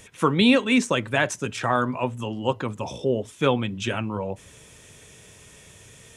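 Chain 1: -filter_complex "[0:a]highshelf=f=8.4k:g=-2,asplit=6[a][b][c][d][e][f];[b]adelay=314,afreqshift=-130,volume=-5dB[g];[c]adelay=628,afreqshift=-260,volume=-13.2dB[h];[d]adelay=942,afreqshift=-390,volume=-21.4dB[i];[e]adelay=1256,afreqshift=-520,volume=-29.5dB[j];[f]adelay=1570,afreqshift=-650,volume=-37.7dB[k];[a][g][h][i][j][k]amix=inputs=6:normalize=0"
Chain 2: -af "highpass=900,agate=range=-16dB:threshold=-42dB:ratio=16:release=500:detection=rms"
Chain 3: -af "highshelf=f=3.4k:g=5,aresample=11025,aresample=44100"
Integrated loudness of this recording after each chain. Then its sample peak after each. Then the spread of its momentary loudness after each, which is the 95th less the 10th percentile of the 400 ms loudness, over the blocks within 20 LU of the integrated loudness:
-23.0, -28.5, -23.5 LUFS; -5.5, -9.0, -5.5 dBFS; 16, 15, 12 LU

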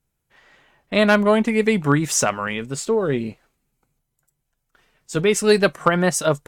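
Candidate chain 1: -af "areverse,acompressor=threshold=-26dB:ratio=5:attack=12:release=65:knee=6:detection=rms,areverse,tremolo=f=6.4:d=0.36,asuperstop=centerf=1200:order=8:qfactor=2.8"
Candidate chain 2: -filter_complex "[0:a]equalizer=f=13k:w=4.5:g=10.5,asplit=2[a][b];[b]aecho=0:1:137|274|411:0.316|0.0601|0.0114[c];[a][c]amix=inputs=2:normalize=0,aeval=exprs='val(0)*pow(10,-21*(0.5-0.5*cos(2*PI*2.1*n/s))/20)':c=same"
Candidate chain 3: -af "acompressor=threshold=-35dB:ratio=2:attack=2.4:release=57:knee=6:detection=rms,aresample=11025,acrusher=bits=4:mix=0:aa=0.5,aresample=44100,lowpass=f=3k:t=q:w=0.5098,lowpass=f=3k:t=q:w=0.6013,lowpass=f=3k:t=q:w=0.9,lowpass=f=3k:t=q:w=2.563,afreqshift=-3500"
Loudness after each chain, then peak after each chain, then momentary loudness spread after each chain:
-30.5, -25.0, -28.0 LUFS; -16.0, -4.5, -15.0 dBFS; 4, 11, 8 LU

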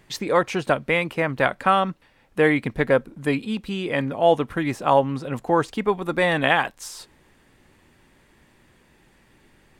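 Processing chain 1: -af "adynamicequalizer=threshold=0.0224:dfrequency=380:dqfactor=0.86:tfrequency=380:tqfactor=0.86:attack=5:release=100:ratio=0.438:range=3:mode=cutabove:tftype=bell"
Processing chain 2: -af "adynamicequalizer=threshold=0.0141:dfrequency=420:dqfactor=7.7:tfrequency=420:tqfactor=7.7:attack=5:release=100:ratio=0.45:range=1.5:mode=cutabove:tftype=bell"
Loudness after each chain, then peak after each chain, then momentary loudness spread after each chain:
-23.5, -22.5 LUFS; -4.5, -4.0 dBFS; 9, 9 LU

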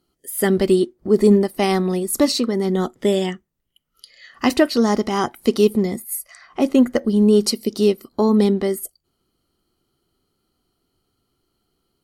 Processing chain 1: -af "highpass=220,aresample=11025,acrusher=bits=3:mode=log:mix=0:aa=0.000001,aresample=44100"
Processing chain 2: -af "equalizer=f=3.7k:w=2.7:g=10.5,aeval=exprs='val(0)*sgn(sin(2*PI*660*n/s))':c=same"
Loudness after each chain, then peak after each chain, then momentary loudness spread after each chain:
-20.0, -17.5 LUFS; -1.5, -1.5 dBFS; 8, 11 LU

